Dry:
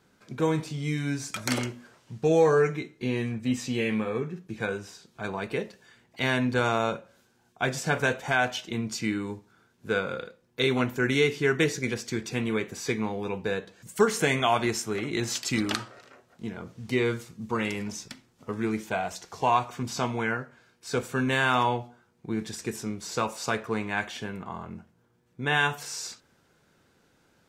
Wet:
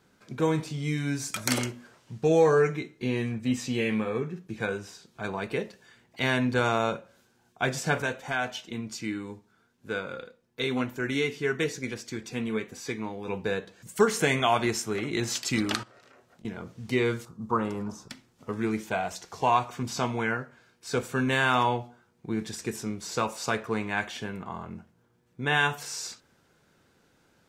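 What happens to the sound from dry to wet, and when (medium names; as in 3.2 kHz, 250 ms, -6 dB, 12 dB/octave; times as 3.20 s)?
1.14–1.70 s: treble shelf 9.5 kHz -> 5.7 kHz +8 dB
8.02–13.28 s: flange 1 Hz, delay 3.1 ms, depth 1.6 ms, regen +69%
15.83–16.45 s: compression 12:1, threshold -51 dBFS
17.25–18.10 s: resonant high shelf 1.6 kHz -9.5 dB, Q 3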